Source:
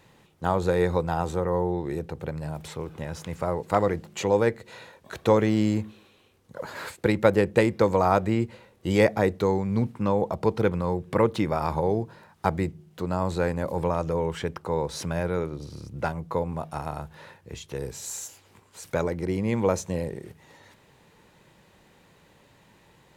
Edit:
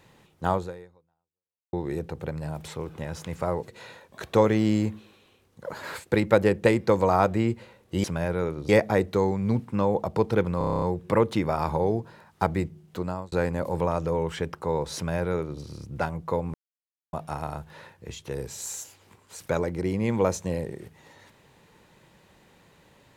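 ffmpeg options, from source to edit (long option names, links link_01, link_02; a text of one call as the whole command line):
ffmpeg -i in.wav -filter_complex "[0:a]asplit=15[link_01][link_02][link_03][link_04][link_05][link_06][link_07][link_08][link_09][link_10][link_11][link_12][link_13][link_14][link_15];[link_01]atrim=end=1.73,asetpts=PTS-STARTPTS,afade=type=out:start_time=0.54:duration=1.19:curve=exp[link_16];[link_02]atrim=start=1.73:end=3.682,asetpts=PTS-STARTPTS,afade=type=in:duration=0.004:curve=hsin[link_17];[link_03]atrim=start=4.598:end=8.962[link_18];[link_04]atrim=start=14.988:end=15.642[link_19];[link_05]atrim=start=8.958:end=10.882[link_20];[link_06]atrim=start=10.848:end=10.882[link_21];[link_07]atrim=start=10.848:end=10.882[link_22];[link_08]atrim=start=10.848:end=10.882[link_23];[link_09]atrim=start=10.848:end=10.882[link_24];[link_10]atrim=start=10.848:end=10.882[link_25];[link_11]atrim=start=10.848:end=10.882[link_26];[link_12]atrim=start=10.848:end=10.882[link_27];[link_13]atrim=start=10.848:end=13.35,asetpts=PTS-STARTPTS,afade=type=out:start_time=2.172:duration=0.33[link_28];[link_14]atrim=start=13.35:end=16.57,asetpts=PTS-STARTPTS,afade=type=in:duration=0.004:curve=hsin,afade=type=out:start_time=3.216:duration=0.004:curve=hsin,apad=pad_dur=0.59[link_29];[link_15]atrim=start=16.57,asetpts=PTS-STARTPTS,afade=type=in:duration=0.004:curve=hsin[link_30];[link_16][link_17]concat=n=2:v=0:a=1[link_31];[link_31][link_18]acrossfade=duration=0.004:curve1=hsin:curve2=hsin[link_32];[link_32][link_19]acrossfade=duration=0.004:curve1=hsin:curve2=hsin[link_33];[link_33][link_20]acrossfade=duration=0.004:curve1=hsin:curve2=hsin[link_34];[link_34][link_21]acrossfade=duration=0.004:curve1=hsin:curve2=hsin[link_35];[link_35][link_22]acrossfade=duration=0.004:curve1=hsin:curve2=hsin[link_36];[link_36][link_23]acrossfade=duration=0.004:curve1=hsin:curve2=hsin[link_37];[link_37][link_24]acrossfade=duration=0.004:curve1=hsin:curve2=hsin[link_38];[link_38][link_25]acrossfade=duration=0.004:curve1=hsin:curve2=hsin[link_39];[link_39][link_26]acrossfade=duration=0.004:curve1=hsin:curve2=hsin[link_40];[link_40][link_27]acrossfade=duration=0.004:curve1=hsin:curve2=hsin[link_41];[link_28][link_29][link_30]concat=n=3:v=0:a=1[link_42];[link_41][link_42]acrossfade=duration=0.004:curve1=hsin:curve2=hsin" out.wav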